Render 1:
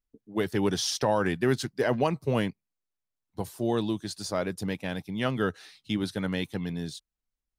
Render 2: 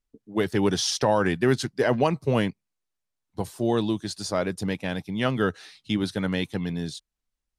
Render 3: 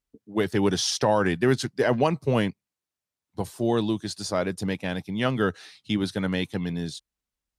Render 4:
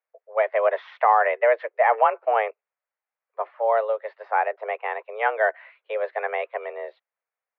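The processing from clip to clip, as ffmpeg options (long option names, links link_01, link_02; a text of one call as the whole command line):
ffmpeg -i in.wav -af "lowpass=11000,volume=3.5dB" out.wav
ffmpeg -i in.wav -af "highpass=44" out.wav
ffmpeg -i in.wav -af "highpass=frequency=300:width_type=q:width=0.5412,highpass=frequency=300:width_type=q:width=1.307,lowpass=frequency=2100:width_type=q:width=0.5176,lowpass=frequency=2100:width_type=q:width=0.7071,lowpass=frequency=2100:width_type=q:width=1.932,afreqshift=220,volume=4.5dB" out.wav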